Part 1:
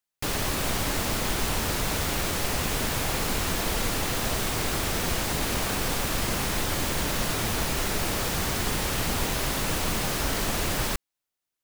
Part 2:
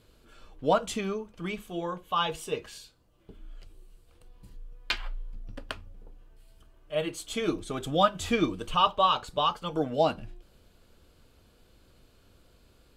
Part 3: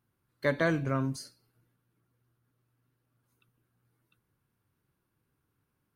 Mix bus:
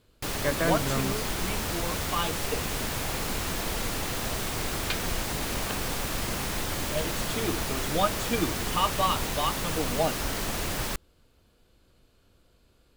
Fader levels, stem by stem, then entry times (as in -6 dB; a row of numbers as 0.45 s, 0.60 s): -3.5 dB, -3.0 dB, -0.5 dB; 0.00 s, 0.00 s, 0.00 s